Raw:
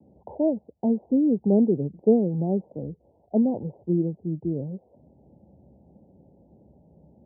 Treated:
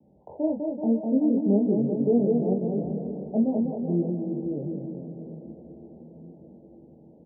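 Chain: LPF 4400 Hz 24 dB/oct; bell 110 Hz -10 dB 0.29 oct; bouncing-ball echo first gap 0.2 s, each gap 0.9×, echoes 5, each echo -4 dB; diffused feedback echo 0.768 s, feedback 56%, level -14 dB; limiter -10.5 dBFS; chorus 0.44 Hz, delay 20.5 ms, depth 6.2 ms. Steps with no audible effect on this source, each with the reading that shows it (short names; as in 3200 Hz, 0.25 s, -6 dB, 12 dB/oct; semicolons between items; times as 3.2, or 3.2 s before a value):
LPF 4400 Hz: input band ends at 810 Hz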